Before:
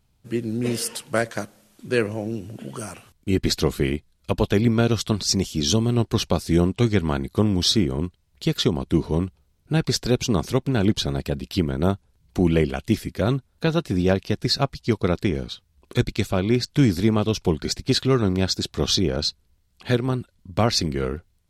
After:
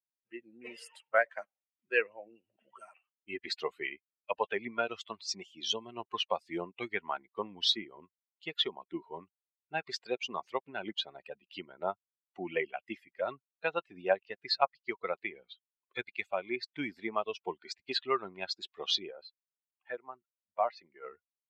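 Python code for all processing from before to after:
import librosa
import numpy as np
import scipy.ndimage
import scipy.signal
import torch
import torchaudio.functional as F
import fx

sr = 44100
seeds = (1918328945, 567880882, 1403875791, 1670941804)

y = fx.chain(x, sr, fx.lowpass(hz=1300.0, slope=6),
    fx.low_shelf(hz=430.0, db=-6.5), at=(19.11, 21.05))
y = fx.bin_expand(y, sr, power=2.0)
y = scipy.signal.sosfilt(scipy.signal.cheby1(2, 1.0, [690.0, 3000.0], 'bandpass', fs=sr, output='sos'), y)
y = F.gain(torch.from_numpy(y), 2.5).numpy()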